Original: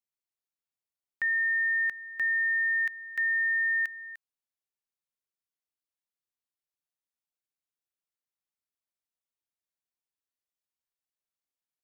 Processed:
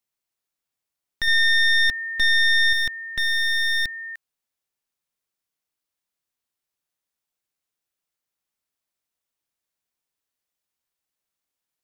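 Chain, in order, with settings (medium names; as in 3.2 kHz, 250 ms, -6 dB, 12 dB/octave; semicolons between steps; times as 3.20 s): one-sided wavefolder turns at -31 dBFS; 1.27–2.73 s: comb 3.9 ms, depth 66%; trim +8 dB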